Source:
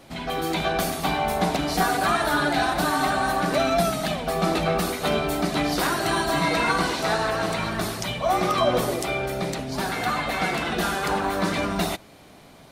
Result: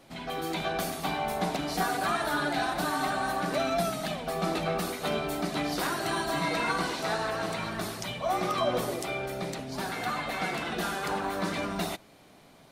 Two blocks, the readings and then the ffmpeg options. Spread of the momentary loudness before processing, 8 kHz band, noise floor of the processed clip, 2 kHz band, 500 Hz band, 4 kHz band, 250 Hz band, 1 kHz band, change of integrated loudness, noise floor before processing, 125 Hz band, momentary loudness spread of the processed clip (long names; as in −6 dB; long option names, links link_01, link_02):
6 LU, −6.5 dB, −56 dBFS, −6.5 dB, −6.5 dB, −6.5 dB, −7.0 dB, −6.5 dB, −6.5 dB, −49 dBFS, −7.5 dB, 6 LU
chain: -af "equalizer=frequency=60:width=1.3:gain=-7,volume=-6.5dB"